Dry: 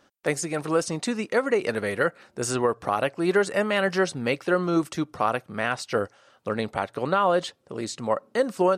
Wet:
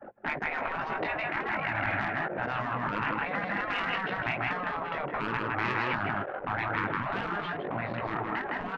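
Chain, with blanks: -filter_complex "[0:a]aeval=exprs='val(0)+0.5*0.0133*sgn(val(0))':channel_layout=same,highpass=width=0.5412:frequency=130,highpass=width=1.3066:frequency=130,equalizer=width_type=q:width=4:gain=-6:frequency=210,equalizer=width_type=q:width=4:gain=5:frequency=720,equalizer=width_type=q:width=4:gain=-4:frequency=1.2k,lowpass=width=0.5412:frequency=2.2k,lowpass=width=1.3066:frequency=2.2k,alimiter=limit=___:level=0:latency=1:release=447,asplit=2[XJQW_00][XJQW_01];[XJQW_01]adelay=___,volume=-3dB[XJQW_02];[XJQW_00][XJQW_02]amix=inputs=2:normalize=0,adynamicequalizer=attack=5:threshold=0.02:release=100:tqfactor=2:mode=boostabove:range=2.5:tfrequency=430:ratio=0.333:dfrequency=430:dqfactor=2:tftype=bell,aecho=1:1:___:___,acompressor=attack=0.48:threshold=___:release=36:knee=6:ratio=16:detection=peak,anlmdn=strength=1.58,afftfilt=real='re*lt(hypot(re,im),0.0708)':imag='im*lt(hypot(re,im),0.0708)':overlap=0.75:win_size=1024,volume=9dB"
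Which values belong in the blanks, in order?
-11.5dB, 19, 159, 0.562, -21dB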